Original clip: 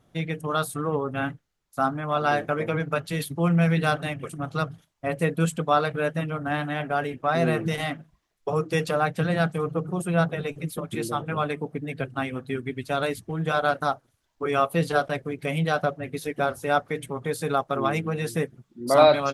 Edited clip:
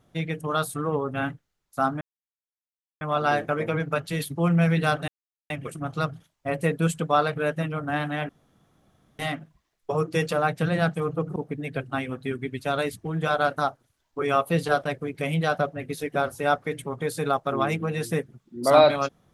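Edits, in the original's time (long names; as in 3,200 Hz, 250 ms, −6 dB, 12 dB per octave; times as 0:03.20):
0:02.01: splice in silence 1.00 s
0:04.08: splice in silence 0.42 s
0:06.87–0:07.77: fill with room tone
0:09.94–0:11.60: remove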